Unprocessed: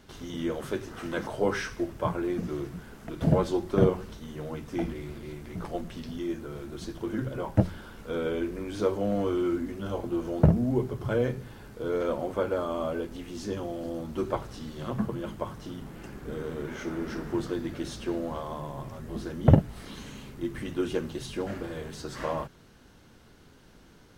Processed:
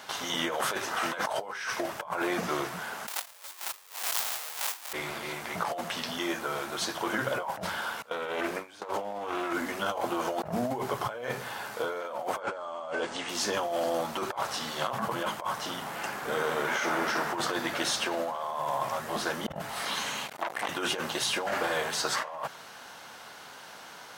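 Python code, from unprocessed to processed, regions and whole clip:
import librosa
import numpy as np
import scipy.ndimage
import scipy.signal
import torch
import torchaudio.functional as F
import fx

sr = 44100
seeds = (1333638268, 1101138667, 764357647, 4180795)

y = fx.chain(x, sr, fx.halfwave_hold(),
    fx.highpass(hz=250.0, slope=12),
    fx.tilt_eq(slope=4.5), at=(3.07, 4.93))
y = fx.chain(y, sr, fx.gate_hold(open_db=-23.0, close_db=-32.0, hold_ms=71.0, range_db=-21, attack_ms=1.4, release_ms=100.0),
    fx.doppler_dist(depth_ms=0.29), at=(8.02, 9.53))
y = fx.chain(y, sr, fx.steep_lowpass(hz=8900.0, slope=48),
    fx.notch(hz=2400.0, q=25.0), at=(12.4, 13.29))
y = fx.chain(y, sr, fx.low_shelf(hz=220.0, db=-5.5),
    fx.transformer_sat(knee_hz=1700.0), at=(20.26, 20.69))
y = scipy.signal.sosfilt(scipy.signal.butter(2, 180.0, 'highpass', fs=sr, output='sos'), y)
y = fx.low_shelf_res(y, sr, hz=500.0, db=-13.5, q=1.5)
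y = fx.over_compress(y, sr, threshold_db=-42.0, ratio=-1.0)
y = y * librosa.db_to_amplitude(7.0)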